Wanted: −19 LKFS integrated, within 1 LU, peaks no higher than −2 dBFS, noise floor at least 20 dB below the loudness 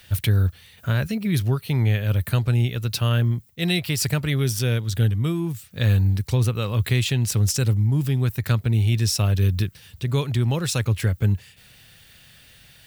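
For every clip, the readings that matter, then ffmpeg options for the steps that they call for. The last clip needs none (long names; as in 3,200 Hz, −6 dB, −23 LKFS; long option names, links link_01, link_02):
integrated loudness −22.5 LKFS; sample peak −7.5 dBFS; target loudness −19.0 LKFS
→ -af "volume=3.5dB"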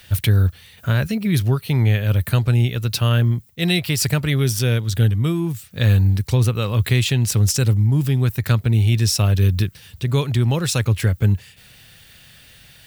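integrated loudness −19.0 LKFS; sample peak −4.0 dBFS; background noise floor −48 dBFS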